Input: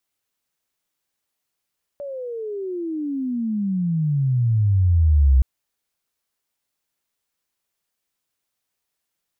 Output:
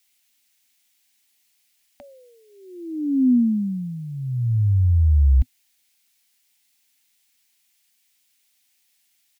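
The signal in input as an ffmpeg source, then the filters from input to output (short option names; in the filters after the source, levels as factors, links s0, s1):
-f lavfi -i "aevalsrc='pow(10,(-28.5+18*t/3.42)/20)*sin(2*PI*580*3.42/log(63/580)*(exp(log(63/580)*t/3.42)-1))':d=3.42:s=44100"
-af "firequalizer=gain_entry='entry(110,0);entry(150,-13);entry(250,11);entry(430,-27);entry(750,5);entry(1100,-2);entry(2100,14)':delay=0.05:min_phase=1"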